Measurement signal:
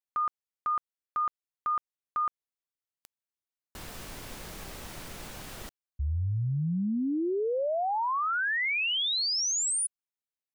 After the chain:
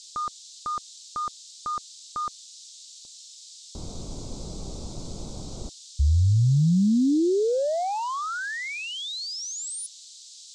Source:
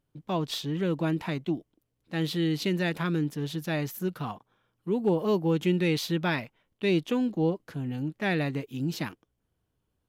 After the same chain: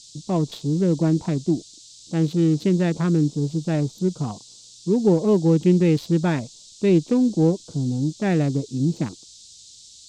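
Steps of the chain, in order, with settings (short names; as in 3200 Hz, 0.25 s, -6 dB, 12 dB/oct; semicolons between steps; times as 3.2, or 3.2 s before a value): Wiener smoothing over 25 samples; band noise 3600–7900 Hz -44 dBFS; tilt shelf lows +6.5 dB, about 820 Hz; gain +3.5 dB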